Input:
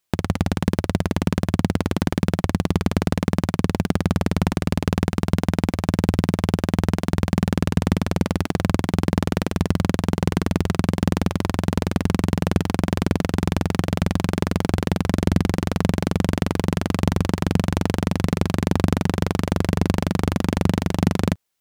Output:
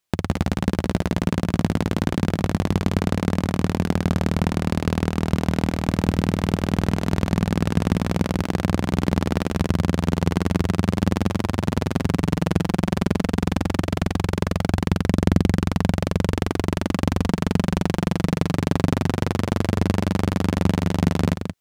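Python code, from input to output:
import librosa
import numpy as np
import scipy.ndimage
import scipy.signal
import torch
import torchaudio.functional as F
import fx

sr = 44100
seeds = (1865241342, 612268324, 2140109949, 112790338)

p1 = fx.high_shelf(x, sr, hz=9800.0, db=-4.0)
p2 = p1 + fx.echo_single(p1, sr, ms=178, db=-7.5, dry=0)
y = p2 * librosa.db_to_amplitude(-1.0)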